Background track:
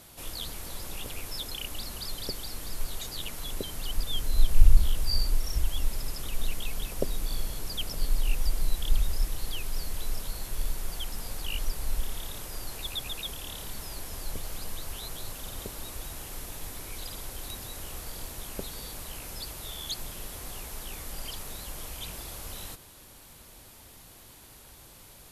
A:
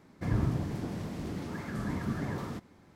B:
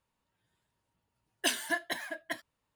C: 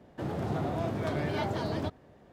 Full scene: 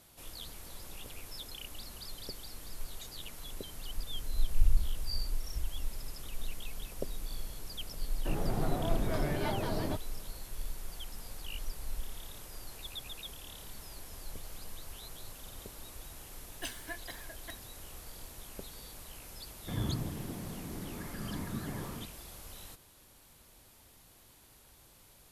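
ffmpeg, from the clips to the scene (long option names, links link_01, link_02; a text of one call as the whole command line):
ffmpeg -i bed.wav -i cue0.wav -i cue1.wav -i cue2.wav -filter_complex "[0:a]volume=-8.5dB[link_01];[3:a]atrim=end=2.32,asetpts=PTS-STARTPTS,volume=-2.5dB,afade=type=in:duration=0.004:curve=hsin,afade=type=out:start_time=2.316:duration=0.004:curve=hsin,adelay=8070[link_02];[2:a]atrim=end=2.75,asetpts=PTS-STARTPTS,volume=-11.5dB,afade=type=in:duration=0.004:curve=hsin,afade=type=out:start_time=2.746:duration=0.004:curve=hsin,adelay=15180[link_03];[1:a]atrim=end=2.95,asetpts=PTS-STARTPTS,volume=-5.5dB,afade=type=in:duration=0.004:curve=hsin,afade=type=out:start_time=2.946:duration=0.004:curve=hsin,adelay=19460[link_04];[link_01][link_02][link_03][link_04]amix=inputs=4:normalize=0" out.wav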